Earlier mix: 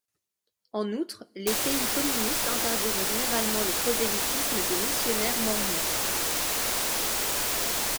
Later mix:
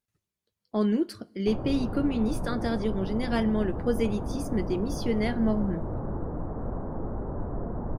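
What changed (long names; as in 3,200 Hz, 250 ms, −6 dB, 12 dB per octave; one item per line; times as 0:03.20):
background: add Gaussian smoothing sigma 9.8 samples
master: add bass and treble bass +13 dB, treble −6 dB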